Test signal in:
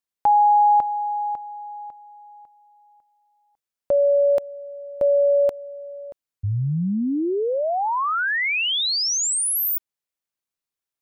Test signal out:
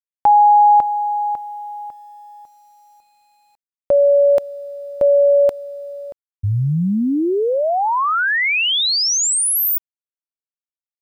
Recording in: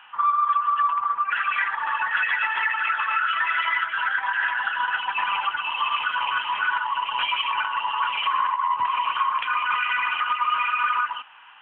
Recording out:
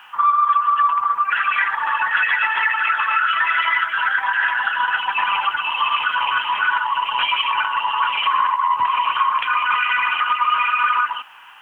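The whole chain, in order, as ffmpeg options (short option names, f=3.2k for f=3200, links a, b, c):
-af "acrusher=bits=10:mix=0:aa=0.000001,volume=5dB"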